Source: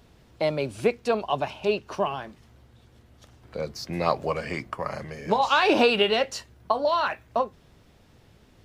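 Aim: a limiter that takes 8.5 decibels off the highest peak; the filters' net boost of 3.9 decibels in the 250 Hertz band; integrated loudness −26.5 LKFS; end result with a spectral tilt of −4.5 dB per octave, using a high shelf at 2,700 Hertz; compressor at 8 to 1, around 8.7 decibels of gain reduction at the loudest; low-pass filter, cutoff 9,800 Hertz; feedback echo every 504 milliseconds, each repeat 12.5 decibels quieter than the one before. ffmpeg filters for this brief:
ffmpeg -i in.wav -af "lowpass=9800,equalizer=frequency=250:width_type=o:gain=5,highshelf=frequency=2700:gain=-7.5,acompressor=threshold=-23dB:ratio=8,alimiter=limit=-21dB:level=0:latency=1,aecho=1:1:504|1008|1512:0.237|0.0569|0.0137,volume=6dB" out.wav

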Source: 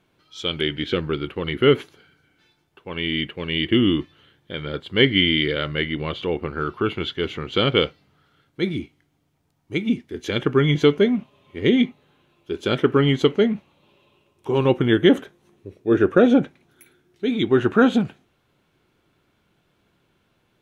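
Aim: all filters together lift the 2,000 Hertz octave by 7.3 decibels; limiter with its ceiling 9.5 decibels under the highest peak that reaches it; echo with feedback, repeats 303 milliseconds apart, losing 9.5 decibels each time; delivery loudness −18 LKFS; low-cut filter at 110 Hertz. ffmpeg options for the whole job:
ffmpeg -i in.wav -af "highpass=110,equalizer=frequency=2000:width_type=o:gain=8.5,alimiter=limit=-6.5dB:level=0:latency=1,aecho=1:1:303|606|909|1212:0.335|0.111|0.0365|0.012,volume=3dB" out.wav

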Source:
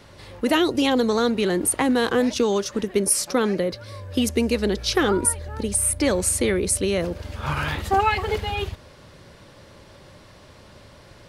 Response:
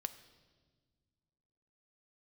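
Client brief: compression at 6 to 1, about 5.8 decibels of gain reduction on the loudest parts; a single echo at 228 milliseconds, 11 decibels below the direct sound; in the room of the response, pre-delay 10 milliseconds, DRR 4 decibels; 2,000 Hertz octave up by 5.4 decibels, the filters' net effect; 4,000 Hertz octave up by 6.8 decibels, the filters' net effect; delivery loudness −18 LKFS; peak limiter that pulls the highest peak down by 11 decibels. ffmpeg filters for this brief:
-filter_complex "[0:a]equalizer=frequency=2000:width_type=o:gain=5,equalizer=frequency=4000:width_type=o:gain=7,acompressor=threshold=-20dB:ratio=6,alimiter=limit=-20.5dB:level=0:latency=1,aecho=1:1:228:0.282,asplit=2[link_01][link_02];[1:a]atrim=start_sample=2205,adelay=10[link_03];[link_02][link_03]afir=irnorm=-1:irlink=0,volume=-2dB[link_04];[link_01][link_04]amix=inputs=2:normalize=0,volume=9.5dB"

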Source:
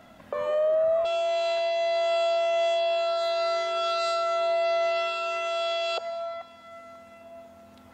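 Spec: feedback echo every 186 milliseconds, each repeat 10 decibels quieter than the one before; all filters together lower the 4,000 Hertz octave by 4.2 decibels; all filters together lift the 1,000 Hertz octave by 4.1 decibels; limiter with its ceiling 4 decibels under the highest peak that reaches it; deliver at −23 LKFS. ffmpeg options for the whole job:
ffmpeg -i in.wav -af "equalizer=frequency=1000:width_type=o:gain=8.5,equalizer=frequency=4000:width_type=o:gain=-5.5,alimiter=limit=-18.5dB:level=0:latency=1,aecho=1:1:186|372|558|744:0.316|0.101|0.0324|0.0104,volume=-0.5dB" out.wav

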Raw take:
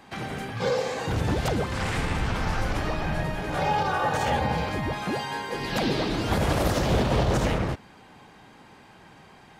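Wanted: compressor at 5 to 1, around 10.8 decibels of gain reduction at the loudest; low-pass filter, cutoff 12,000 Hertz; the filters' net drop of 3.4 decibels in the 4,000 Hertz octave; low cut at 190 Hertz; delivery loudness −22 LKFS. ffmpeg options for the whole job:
ffmpeg -i in.wav -af "highpass=190,lowpass=12000,equalizer=frequency=4000:width_type=o:gain=-4.5,acompressor=threshold=-34dB:ratio=5,volume=15dB" out.wav

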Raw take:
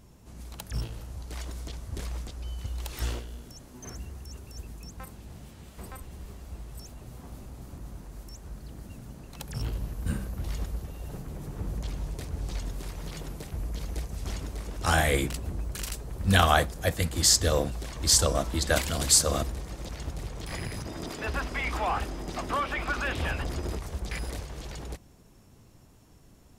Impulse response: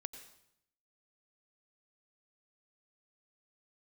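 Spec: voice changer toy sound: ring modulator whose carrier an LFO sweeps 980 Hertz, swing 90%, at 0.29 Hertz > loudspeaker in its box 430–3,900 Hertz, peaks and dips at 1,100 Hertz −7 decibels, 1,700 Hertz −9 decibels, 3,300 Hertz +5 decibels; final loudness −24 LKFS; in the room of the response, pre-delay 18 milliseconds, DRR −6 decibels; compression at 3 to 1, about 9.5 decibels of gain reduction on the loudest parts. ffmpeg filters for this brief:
-filter_complex "[0:a]acompressor=threshold=-29dB:ratio=3,asplit=2[link_01][link_02];[1:a]atrim=start_sample=2205,adelay=18[link_03];[link_02][link_03]afir=irnorm=-1:irlink=0,volume=9dB[link_04];[link_01][link_04]amix=inputs=2:normalize=0,aeval=exprs='val(0)*sin(2*PI*980*n/s+980*0.9/0.29*sin(2*PI*0.29*n/s))':channel_layout=same,highpass=430,equalizer=frequency=1100:width_type=q:width=4:gain=-7,equalizer=frequency=1700:width_type=q:width=4:gain=-9,equalizer=frequency=3300:width_type=q:width=4:gain=5,lowpass=frequency=3900:width=0.5412,lowpass=frequency=3900:width=1.3066,volume=9.5dB"

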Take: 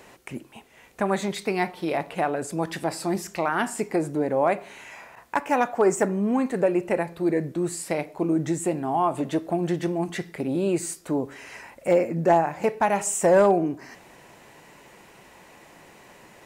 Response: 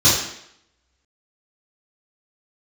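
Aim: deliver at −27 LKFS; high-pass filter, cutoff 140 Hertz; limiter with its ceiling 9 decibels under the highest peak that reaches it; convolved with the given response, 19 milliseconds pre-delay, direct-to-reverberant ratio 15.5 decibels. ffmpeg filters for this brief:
-filter_complex "[0:a]highpass=140,alimiter=limit=-16.5dB:level=0:latency=1,asplit=2[link_01][link_02];[1:a]atrim=start_sample=2205,adelay=19[link_03];[link_02][link_03]afir=irnorm=-1:irlink=0,volume=-36.5dB[link_04];[link_01][link_04]amix=inputs=2:normalize=0,volume=0.5dB"

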